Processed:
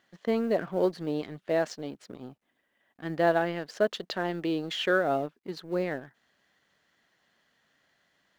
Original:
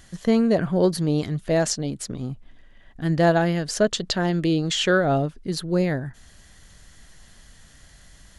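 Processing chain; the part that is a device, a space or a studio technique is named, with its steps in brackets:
phone line with mismatched companding (band-pass filter 300–3,200 Hz; mu-law and A-law mismatch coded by A)
level −4 dB

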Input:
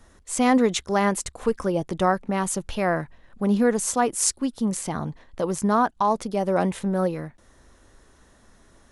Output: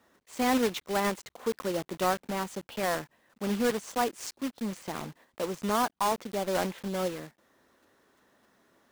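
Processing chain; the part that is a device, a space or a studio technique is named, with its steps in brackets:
early digital voice recorder (band-pass filter 210–3,900 Hz; one scale factor per block 3 bits)
level −6.5 dB

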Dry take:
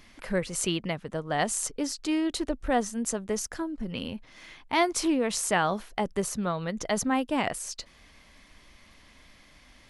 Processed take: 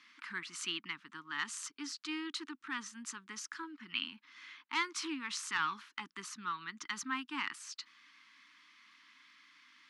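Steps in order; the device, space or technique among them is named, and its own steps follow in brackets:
intercom (band-pass filter 490–4,600 Hz; parametric band 880 Hz +12 dB 0.39 octaves; soft clipping −12.5 dBFS, distortion −20 dB)
high-pass filter 170 Hz 6 dB per octave
0:03.63–0:04.06: parametric band 2,300 Hz +8 dB 1.8 octaves
Chebyshev band-stop filter 300–1,200 Hz, order 3
level −2.5 dB

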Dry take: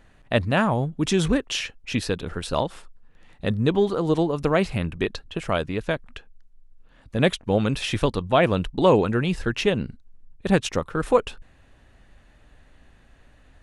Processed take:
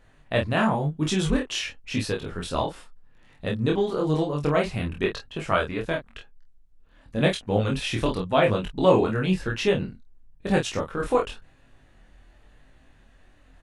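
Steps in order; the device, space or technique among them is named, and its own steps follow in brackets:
double-tracked vocal (double-tracking delay 27 ms −4.5 dB; chorus effect 0.94 Hz, delay 19 ms, depth 5.3 ms)
0:04.95–0:05.82: dynamic equaliser 1,400 Hz, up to +7 dB, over −42 dBFS, Q 1.3

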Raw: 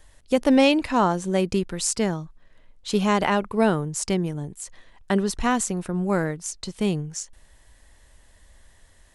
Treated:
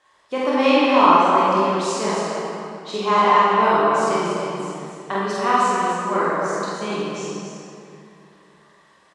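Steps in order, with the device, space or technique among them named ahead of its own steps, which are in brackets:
station announcement (band-pass filter 340–5,000 Hz; parametric band 1,100 Hz +12 dB 0.34 octaves; loudspeakers that aren't time-aligned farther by 16 metres −1 dB, 99 metres −5 dB; convolution reverb RT60 2.7 s, pre-delay 14 ms, DRR −5.5 dB)
level −4.5 dB

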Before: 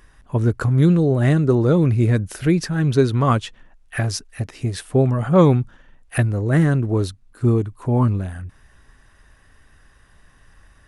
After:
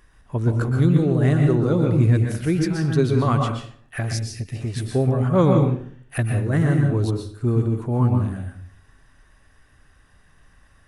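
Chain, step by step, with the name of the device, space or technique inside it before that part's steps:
bathroom (convolution reverb RT60 0.55 s, pre-delay 117 ms, DRR 2.5 dB)
0:04.13–0:04.56: flat-topped bell 940 Hz −10.5 dB
level −4.5 dB

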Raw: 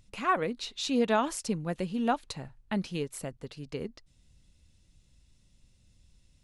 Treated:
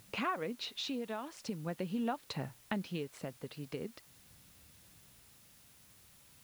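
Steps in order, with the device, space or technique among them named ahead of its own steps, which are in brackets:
medium wave at night (band-pass filter 110–4,200 Hz; downward compressor, threshold −37 dBFS, peak gain reduction 15 dB; amplitude tremolo 0.43 Hz, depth 45%; steady tone 10,000 Hz −75 dBFS; white noise bed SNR 21 dB)
level +4.5 dB

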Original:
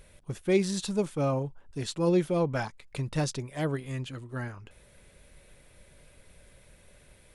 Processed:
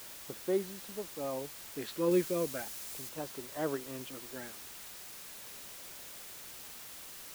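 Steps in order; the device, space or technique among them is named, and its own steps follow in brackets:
high-pass filter 140 Hz
shortwave radio (band-pass filter 290–2,500 Hz; amplitude tremolo 0.51 Hz, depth 71%; auto-filter notch sine 0.35 Hz 750–2,500 Hz; white noise bed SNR 9 dB)
0:02.11–0:03.09: bass and treble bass +3 dB, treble +5 dB

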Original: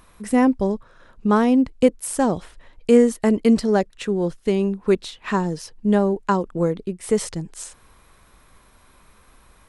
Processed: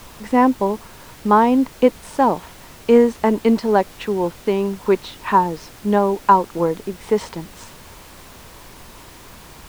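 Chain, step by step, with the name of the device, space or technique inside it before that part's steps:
horn gramophone (band-pass filter 220–4,100 Hz; parametric band 930 Hz +12 dB 0.37 octaves; tape wow and flutter 18 cents; pink noise bed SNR 22 dB)
level +2 dB

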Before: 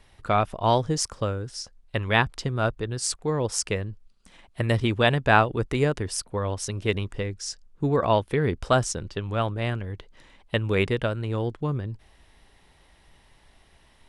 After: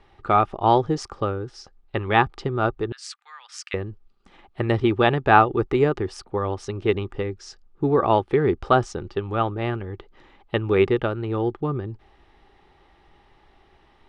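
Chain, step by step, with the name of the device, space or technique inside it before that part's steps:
inside a cardboard box (low-pass filter 3,900 Hz 12 dB per octave; hollow resonant body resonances 370/810/1,200 Hz, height 11 dB, ringing for 30 ms)
0:02.92–0:03.74: inverse Chebyshev high-pass filter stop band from 340 Hz, stop band 70 dB
level −1 dB

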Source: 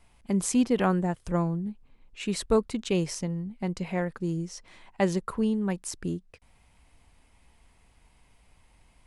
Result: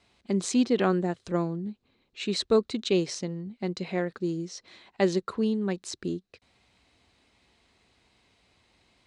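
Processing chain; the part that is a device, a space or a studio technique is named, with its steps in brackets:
car door speaker (loudspeaker in its box 110–7,500 Hz, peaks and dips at 150 Hz −7 dB, 370 Hz +5 dB, 920 Hz −5 dB, 4,000 Hz +10 dB)

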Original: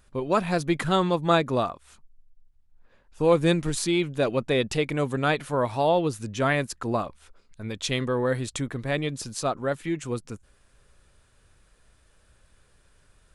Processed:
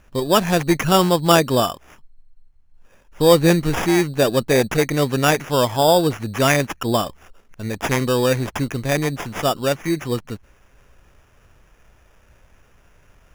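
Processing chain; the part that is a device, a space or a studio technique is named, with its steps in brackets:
crushed at another speed (tape speed factor 0.5×; decimation without filtering 21×; tape speed factor 2×)
level +7 dB

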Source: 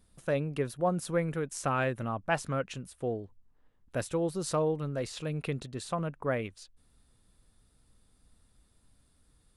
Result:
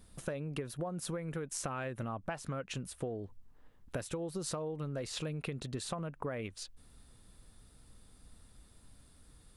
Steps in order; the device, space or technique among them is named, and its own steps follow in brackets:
serial compression, leveller first (downward compressor, threshold −31 dBFS, peak gain reduction 8.5 dB; downward compressor 6 to 1, threshold −42 dBFS, peak gain reduction 12 dB)
level +6.5 dB

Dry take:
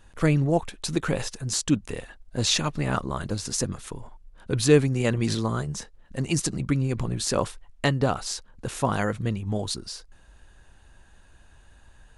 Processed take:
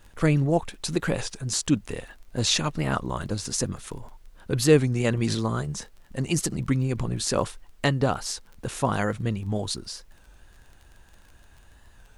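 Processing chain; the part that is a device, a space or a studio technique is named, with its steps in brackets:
warped LP (wow of a warped record 33 1/3 rpm, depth 100 cents; surface crackle 20 per second −39 dBFS; pink noise bed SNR 40 dB)

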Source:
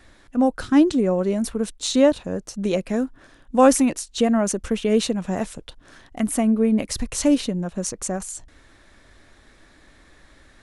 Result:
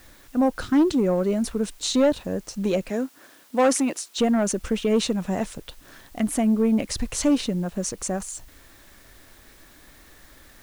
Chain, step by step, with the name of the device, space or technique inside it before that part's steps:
compact cassette (soft clipping −12.5 dBFS, distortion −14 dB; low-pass filter 9,800 Hz; tape wow and flutter 25 cents; white noise bed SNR 31 dB)
0:02.90–0:04.19: high-pass filter 260 Hz 12 dB per octave

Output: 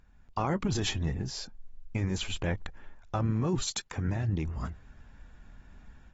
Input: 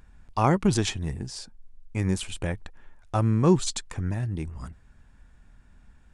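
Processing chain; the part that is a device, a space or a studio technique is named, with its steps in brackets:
0:03.61–0:04.08: high-pass filter 110 Hz 6 dB per octave
low-bitrate web radio (automatic gain control gain up to 10 dB; brickwall limiter −13.5 dBFS, peak gain reduction 11.5 dB; level −7.5 dB; AAC 24 kbit/s 44,100 Hz)

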